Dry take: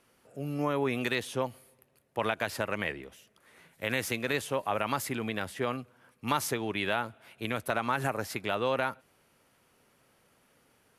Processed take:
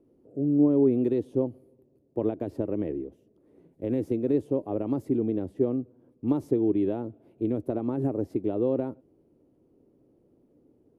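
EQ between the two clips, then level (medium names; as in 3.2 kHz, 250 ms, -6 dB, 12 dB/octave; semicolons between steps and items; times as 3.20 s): FFT filter 210 Hz 0 dB, 310 Hz +11 dB, 1.5 kHz -29 dB; +4.5 dB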